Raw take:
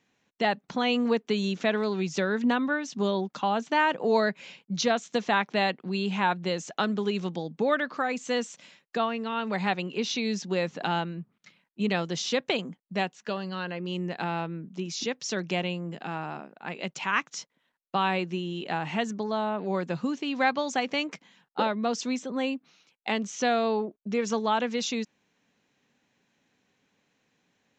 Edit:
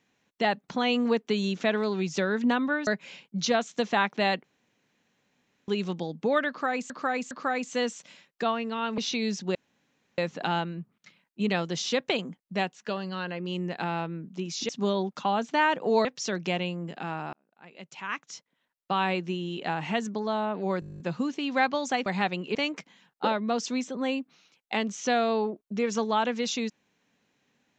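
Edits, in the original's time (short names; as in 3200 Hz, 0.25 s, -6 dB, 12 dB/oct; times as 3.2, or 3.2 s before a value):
2.87–4.23 move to 15.09
5.8–7.04 room tone
7.85–8.26 loop, 3 plays
9.52–10.01 move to 20.9
10.58 insert room tone 0.63 s
16.37–18.17 fade in
19.84 stutter 0.02 s, 11 plays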